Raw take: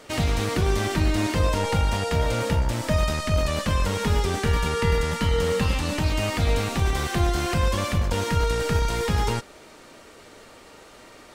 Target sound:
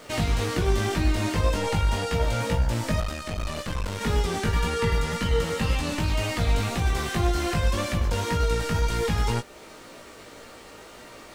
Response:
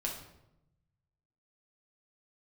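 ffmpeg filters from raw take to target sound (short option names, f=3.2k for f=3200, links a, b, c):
-filter_complex "[0:a]asplit=2[a][b];[b]acompressor=threshold=-36dB:ratio=6,volume=-1.5dB[c];[a][c]amix=inputs=2:normalize=0,flanger=delay=16.5:depth=2.1:speed=1.9,acrusher=bits=9:mix=0:aa=0.000001,asettb=1/sr,asplit=3[d][e][f];[d]atrim=end=3.004[g];[e]atrim=start=3:end=4.01,asetpts=PTS-STARTPTS,afade=t=in:d=0.004:c=qsin,afade=t=out:st=1.006:d=0.004:c=qsin,aeval=exprs='(tanh(17.8*val(0)+0.75)-tanh(0.75))/17.8':c=same[h];[f]atrim=start=4.006[i];[g][h]acrossfade=d=0.004:c1=hsin:c2=qsin[j];[j][i]acrossfade=d=0.004:c1=qsin:c2=hsin"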